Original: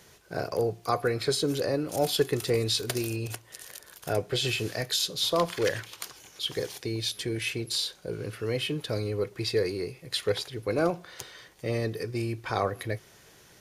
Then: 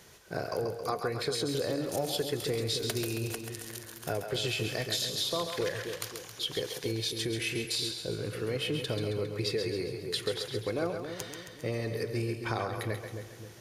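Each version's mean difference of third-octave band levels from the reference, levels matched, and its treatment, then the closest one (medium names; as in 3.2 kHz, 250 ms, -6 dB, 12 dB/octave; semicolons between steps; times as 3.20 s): 6.0 dB: compression, threshold -29 dBFS, peak gain reduction 10.5 dB; on a send: two-band feedback delay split 460 Hz, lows 268 ms, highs 135 ms, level -6.5 dB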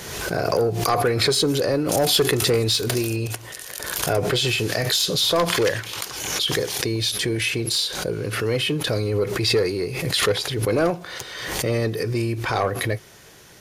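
4.5 dB: saturation -19.5 dBFS, distortion -16 dB; swell ahead of each attack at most 39 dB/s; trim +7.5 dB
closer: second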